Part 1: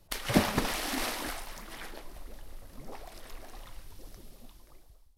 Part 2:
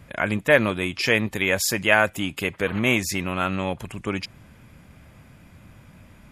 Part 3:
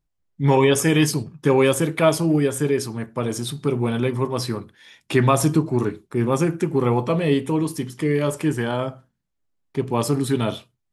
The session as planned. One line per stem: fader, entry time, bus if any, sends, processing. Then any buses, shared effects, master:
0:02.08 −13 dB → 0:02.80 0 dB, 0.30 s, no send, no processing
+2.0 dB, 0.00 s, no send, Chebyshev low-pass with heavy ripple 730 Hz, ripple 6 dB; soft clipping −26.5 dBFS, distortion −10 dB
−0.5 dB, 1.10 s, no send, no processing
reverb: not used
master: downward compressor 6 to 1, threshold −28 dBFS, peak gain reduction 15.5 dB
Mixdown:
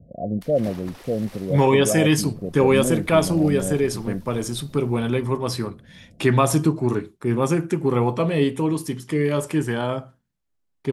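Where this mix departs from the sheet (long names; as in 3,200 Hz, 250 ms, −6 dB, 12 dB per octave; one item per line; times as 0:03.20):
stem 2: missing soft clipping −26.5 dBFS, distortion −10 dB
master: missing downward compressor 6 to 1, threshold −28 dBFS, peak gain reduction 15.5 dB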